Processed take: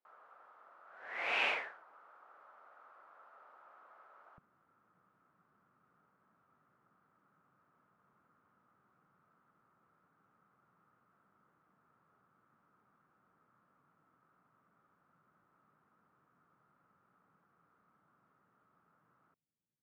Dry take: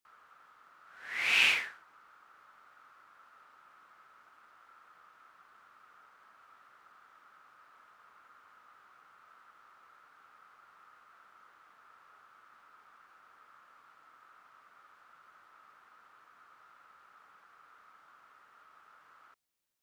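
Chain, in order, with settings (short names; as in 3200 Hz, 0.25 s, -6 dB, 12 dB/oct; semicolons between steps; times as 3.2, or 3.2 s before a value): band-pass 630 Hz, Q 1.9, from 4.38 s 160 Hz; gain +8.5 dB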